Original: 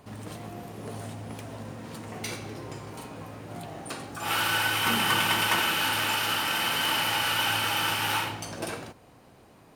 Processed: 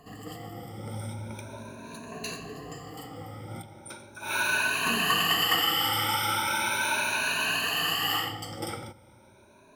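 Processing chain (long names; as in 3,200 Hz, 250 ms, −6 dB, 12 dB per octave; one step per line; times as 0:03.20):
rippled gain that drifts along the octave scale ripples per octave 1.5, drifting +0.38 Hz, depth 21 dB
0:03.62–0:04.45: expander for the loud parts 1.5 to 1, over −35 dBFS
level −5 dB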